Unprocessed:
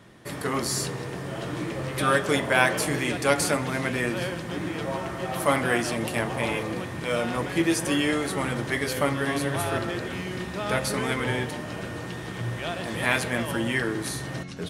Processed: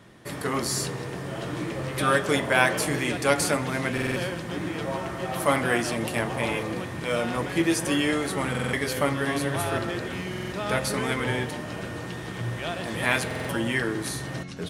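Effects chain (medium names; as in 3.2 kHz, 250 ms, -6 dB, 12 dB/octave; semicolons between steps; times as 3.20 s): buffer glitch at 3.93/8.50/10.29/13.26 s, samples 2048, times 4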